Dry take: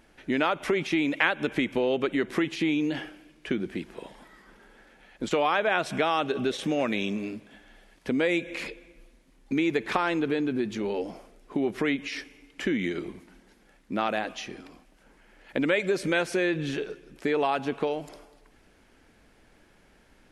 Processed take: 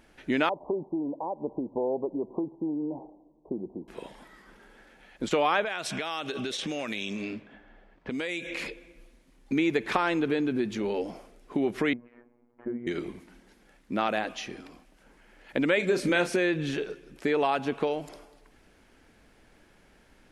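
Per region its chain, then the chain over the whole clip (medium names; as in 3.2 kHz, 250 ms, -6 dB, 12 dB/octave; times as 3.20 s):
0.49–3.88 s: steep low-pass 1 kHz 96 dB/octave + bass shelf 310 Hz -9.5 dB
5.64–8.54 s: level-controlled noise filter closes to 980 Hz, open at -22.5 dBFS + treble shelf 2.2 kHz +12 dB + compression 4:1, threshold -30 dBFS
11.93–12.87 s: low-pass 1 kHz 24 dB/octave + bass shelf 460 Hz -6.5 dB + robot voice 120 Hz
15.77–16.36 s: peaking EQ 250 Hz +9 dB 0.37 oct + doubling 34 ms -8.5 dB
whole clip: none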